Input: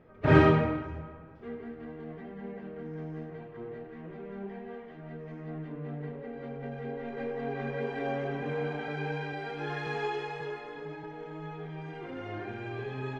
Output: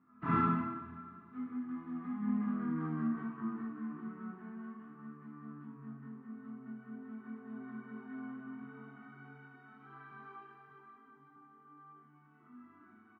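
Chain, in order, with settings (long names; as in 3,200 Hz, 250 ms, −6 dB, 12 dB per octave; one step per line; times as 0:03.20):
source passing by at 0:02.91, 23 m/s, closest 12 metres
pair of resonant band-passes 530 Hz, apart 2.3 octaves
ambience of single reflections 23 ms −3.5 dB, 57 ms −5.5 dB
on a send at −17 dB: convolution reverb RT60 3.9 s, pre-delay 3 ms
on the sum: level +15 dB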